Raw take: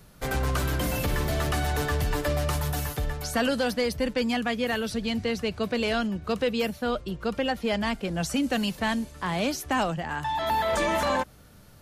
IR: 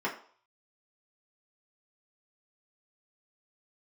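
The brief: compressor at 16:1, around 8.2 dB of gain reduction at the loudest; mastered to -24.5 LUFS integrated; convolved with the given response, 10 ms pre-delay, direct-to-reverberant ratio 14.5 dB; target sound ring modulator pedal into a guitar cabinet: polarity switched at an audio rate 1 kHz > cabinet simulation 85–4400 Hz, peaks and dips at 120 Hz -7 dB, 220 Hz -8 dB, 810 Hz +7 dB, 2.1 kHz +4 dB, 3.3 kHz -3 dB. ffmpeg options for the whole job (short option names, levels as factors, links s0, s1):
-filter_complex "[0:a]acompressor=threshold=0.0316:ratio=16,asplit=2[s0][s1];[1:a]atrim=start_sample=2205,adelay=10[s2];[s1][s2]afir=irnorm=-1:irlink=0,volume=0.075[s3];[s0][s3]amix=inputs=2:normalize=0,aeval=exprs='val(0)*sgn(sin(2*PI*1000*n/s))':c=same,highpass=85,equalizer=f=120:t=q:w=4:g=-7,equalizer=f=220:t=q:w=4:g=-8,equalizer=f=810:t=q:w=4:g=7,equalizer=f=2100:t=q:w=4:g=4,equalizer=f=3300:t=q:w=4:g=-3,lowpass=f=4400:w=0.5412,lowpass=f=4400:w=1.3066,volume=2.37"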